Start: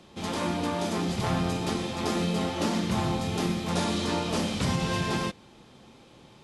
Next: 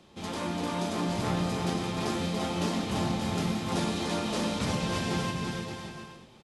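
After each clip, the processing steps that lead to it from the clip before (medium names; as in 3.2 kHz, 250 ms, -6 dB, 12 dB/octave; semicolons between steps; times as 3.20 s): bouncing-ball echo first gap 340 ms, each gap 0.7×, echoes 5; trim -4 dB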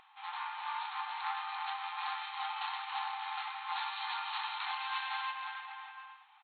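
local Wiener filter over 9 samples; FFT band-pass 740–4400 Hz; upward compressor, threshold -58 dBFS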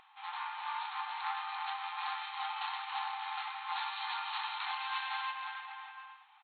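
no audible change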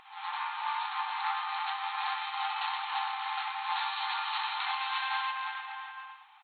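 reverse echo 116 ms -9 dB; trim +4.5 dB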